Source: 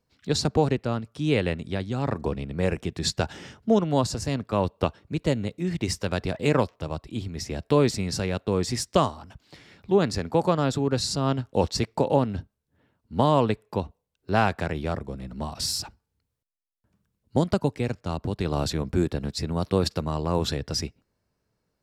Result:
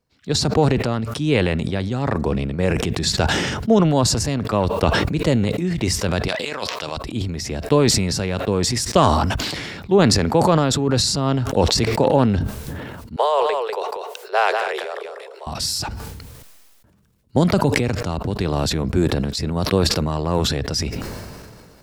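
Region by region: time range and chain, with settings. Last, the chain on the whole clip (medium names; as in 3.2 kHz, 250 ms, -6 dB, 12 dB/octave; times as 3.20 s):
6.28–6.97 s: high-pass 900 Hz 6 dB/octave + peaking EQ 4.2 kHz +7.5 dB 1.5 oct + compressor with a negative ratio -30 dBFS, ratio -0.5
13.16–15.47 s: steep high-pass 390 Hz 96 dB/octave + delay 195 ms -8.5 dB + upward expansion, over -33 dBFS
whole clip: level rider gain up to 3.5 dB; transient shaper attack +2 dB, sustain +8 dB; decay stretcher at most 28 dB/s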